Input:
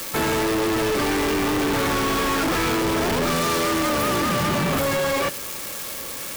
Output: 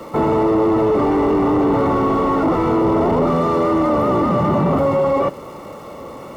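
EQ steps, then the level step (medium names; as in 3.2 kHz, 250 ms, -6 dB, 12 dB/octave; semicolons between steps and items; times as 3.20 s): Savitzky-Golay filter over 65 samples; high-pass 83 Hz 6 dB/octave; +7.5 dB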